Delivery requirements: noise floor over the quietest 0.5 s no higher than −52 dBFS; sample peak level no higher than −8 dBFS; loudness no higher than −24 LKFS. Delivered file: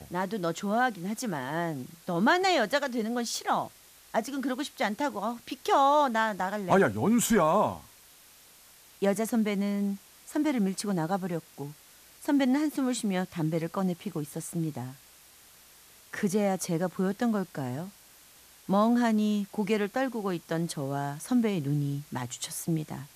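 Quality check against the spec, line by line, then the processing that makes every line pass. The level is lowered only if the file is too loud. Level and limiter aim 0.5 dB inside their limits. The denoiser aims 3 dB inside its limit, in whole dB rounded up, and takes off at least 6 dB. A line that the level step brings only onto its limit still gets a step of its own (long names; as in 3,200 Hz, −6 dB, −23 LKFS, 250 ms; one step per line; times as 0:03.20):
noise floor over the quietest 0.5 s −56 dBFS: in spec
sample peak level −12.0 dBFS: in spec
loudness −29.0 LKFS: in spec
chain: no processing needed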